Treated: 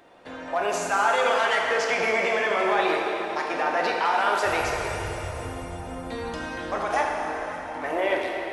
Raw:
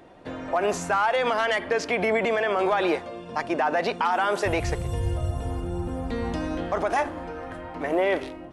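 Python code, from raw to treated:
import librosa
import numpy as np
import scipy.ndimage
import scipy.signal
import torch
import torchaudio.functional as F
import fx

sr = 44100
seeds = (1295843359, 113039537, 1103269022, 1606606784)

y = fx.low_shelf(x, sr, hz=420.0, db=-12.0)
y = fx.rev_plate(y, sr, seeds[0], rt60_s=3.7, hf_ratio=0.8, predelay_ms=0, drr_db=-1.5)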